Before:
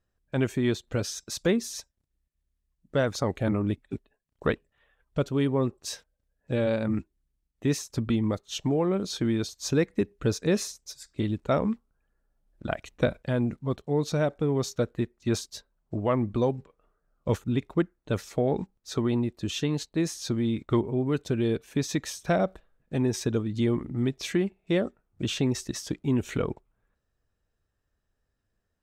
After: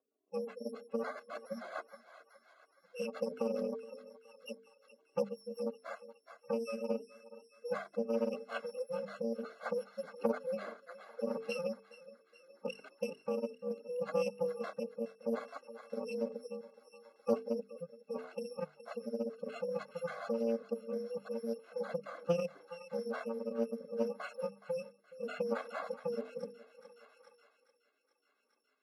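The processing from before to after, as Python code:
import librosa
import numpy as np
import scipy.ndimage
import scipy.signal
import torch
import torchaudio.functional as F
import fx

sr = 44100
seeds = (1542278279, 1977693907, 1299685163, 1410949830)

p1 = fx.bit_reversed(x, sr, seeds[0], block=128)
p2 = scipy.signal.sosfilt(scipy.signal.butter(4, 250.0, 'highpass', fs=sr, output='sos'), p1)
p3 = fx.spec_gate(p2, sr, threshold_db=-15, keep='strong')
p4 = scipy.signal.sosfilt(scipy.signal.butter(2, 1100.0, 'lowpass', fs=sr, output='sos'), p3)
p5 = fx.hum_notches(p4, sr, base_hz=50, count=9)
p6 = p5 + 0.39 * np.pad(p5, (int(1.9 * sr / 1000.0), 0))[:len(p5)]
p7 = p6 + fx.echo_thinned(p6, sr, ms=420, feedback_pct=68, hz=720.0, wet_db=-12, dry=0)
p8 = fx.rotary_switch(p7, sr, hz=5.5, then_hz=0.7, switch_at_s=7.15)
p9 = fx.doppler_dist(p8, sr, depth_ms=0.12)
y = F.gain(torch.from_numpy(p9), 9.0).numpy()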